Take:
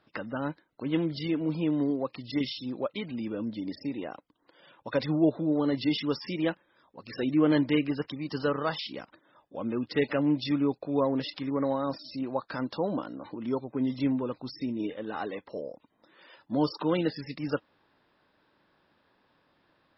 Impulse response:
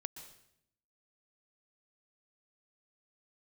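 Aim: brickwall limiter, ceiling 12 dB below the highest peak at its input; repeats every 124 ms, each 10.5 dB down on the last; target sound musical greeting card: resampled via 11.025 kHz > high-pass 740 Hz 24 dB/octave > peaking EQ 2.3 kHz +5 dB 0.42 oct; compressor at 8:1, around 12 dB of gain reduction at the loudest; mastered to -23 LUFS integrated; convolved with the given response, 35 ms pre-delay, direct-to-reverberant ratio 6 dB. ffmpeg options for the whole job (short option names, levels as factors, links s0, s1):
-filter_complex "[0:a]acompressor=threshold=0.0251:ratio=8,alimiter=level_in=2.66:limit=0.0631:level=0:latency=1,volume=0.376,aecho=1:1:124|248|372:0.299|0.0896|0.0269,asplit=2[s0][s1];[1:a]atrim=start_sample=2205,adelay=35[s2];[s1][s2]afir=irnorm=-1:irlink=0,volume=0.668[s3];[s0][s3]amix=inputs=2:normalize=0,aresample=11025,aresample=44100,highpass=f=740:w=0.5412,highpass=f=740:w=1.3066,equalizer=f=2300:t=o:w=0.42:g=5,volume=16.8"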